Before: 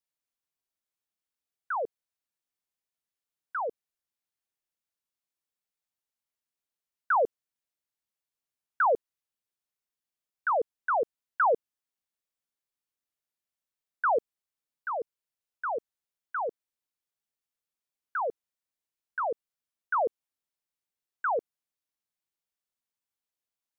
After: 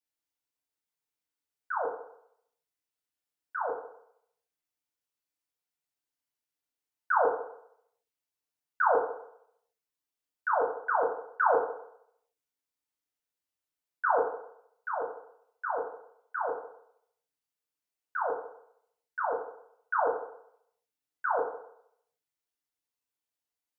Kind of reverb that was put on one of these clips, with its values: FDN reverb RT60 0.72 s, low-frequency decay 0.75×, high-frequency decay 0.85×, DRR -3 dB; trim -5 dB

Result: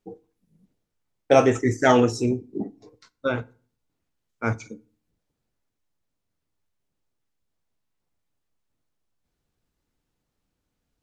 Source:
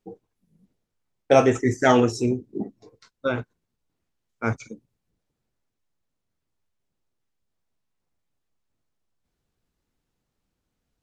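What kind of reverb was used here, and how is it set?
FDN reverb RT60 0.42 s, low-frequency decay 1.25×, high-frequency decay 0.75×, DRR 17 dB

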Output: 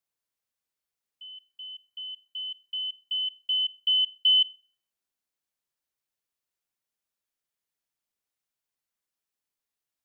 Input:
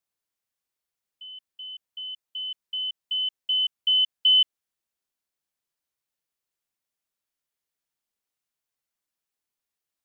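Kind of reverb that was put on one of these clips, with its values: plate-style reverb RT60 0.51 s, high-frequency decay 0.85×, DRR 19.5 dB; trim -2 dB

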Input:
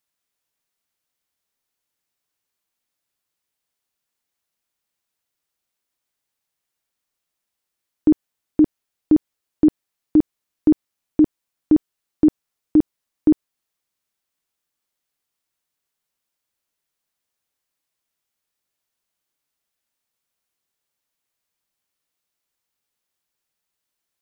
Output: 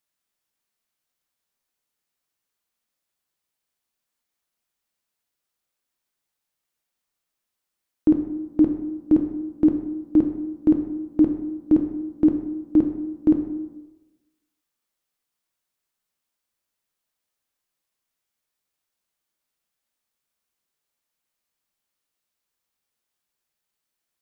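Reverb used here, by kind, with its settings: plate-style reverb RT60 1.1 s, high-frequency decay 0.55×, DRR 4 dB; trim -2.5 dB

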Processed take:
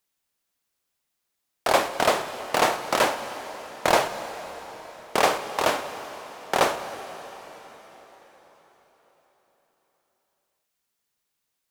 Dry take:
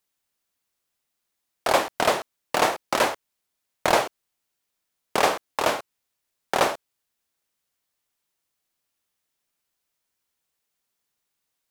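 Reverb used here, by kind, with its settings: plate-style reverb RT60 4.8 s, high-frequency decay 0.9×, DRR 9 dB

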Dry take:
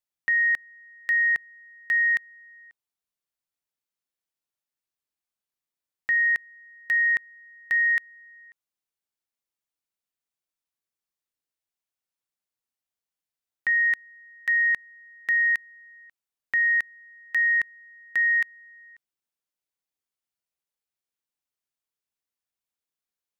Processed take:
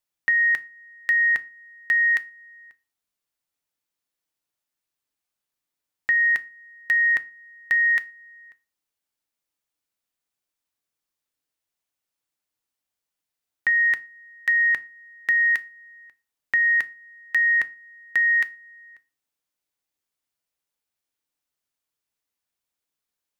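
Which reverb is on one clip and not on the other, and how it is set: FDN reverb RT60 0.31 s, low-frequency decay 1.3×, high-frequency decay 0.85×, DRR 12.5 dB; trim +4.5 dB

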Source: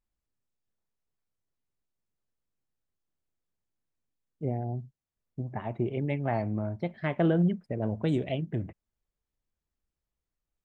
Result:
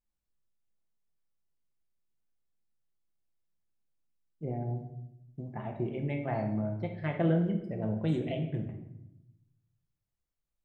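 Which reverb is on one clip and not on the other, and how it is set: simulated room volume 260 m³, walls mixed, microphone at 0.81 m; trim -5.5 dB

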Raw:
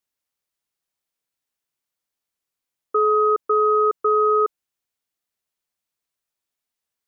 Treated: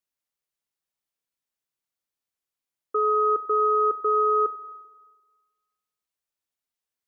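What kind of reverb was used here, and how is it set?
spring tank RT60 1.4 s, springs 32/43 ms, chirp 50 ms, DRR 14.5 dB; trim -5 dB

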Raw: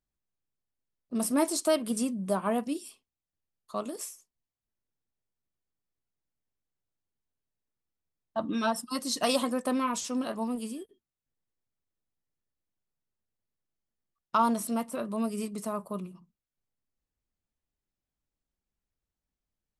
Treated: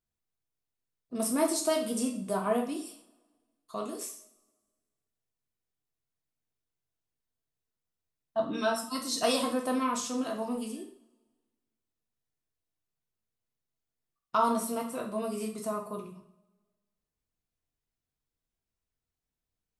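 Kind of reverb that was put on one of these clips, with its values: two-slope reverb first 0.47 s, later 1.5 s, from -22 dB, DRR 1 dB; trim -3 dB

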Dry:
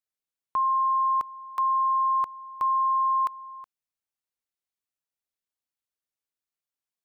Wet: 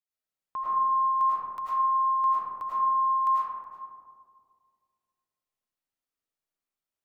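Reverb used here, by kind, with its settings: algorithmic reverb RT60 2.1 s, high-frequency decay 0.25×, pre-delay 65 ms, DRR -9.5 dB; trim -8 dB

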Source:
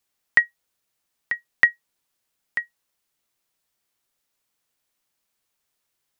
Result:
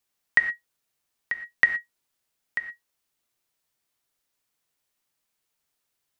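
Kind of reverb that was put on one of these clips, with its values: gated-style reverb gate 140 ms flat, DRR 7.5 dB; trim -2.5 dB

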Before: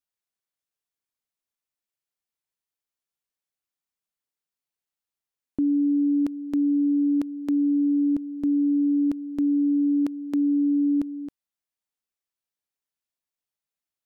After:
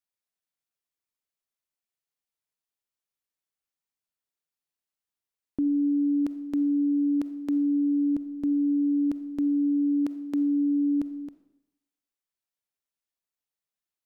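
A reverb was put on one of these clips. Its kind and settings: algorithmic reverb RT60 0.84 s, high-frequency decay 0.95×, pre-delay 5 ms, DRR 13 dB; trim -2.5 dB

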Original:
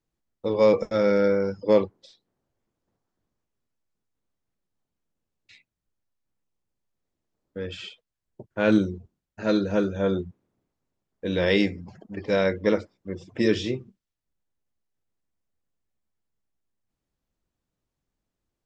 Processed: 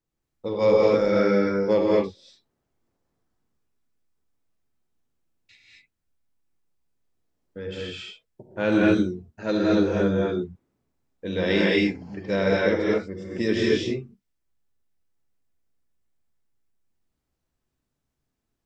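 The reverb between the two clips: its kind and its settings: gated-style reverb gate 260 ms rising, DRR -4.5 dB; trim -3 dB

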